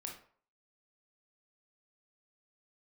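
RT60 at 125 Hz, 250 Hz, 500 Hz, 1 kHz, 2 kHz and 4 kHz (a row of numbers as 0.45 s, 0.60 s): 0.40 s, 0.40 s, 0.50 s, 0.50 s, 0.40 s, 0.30 s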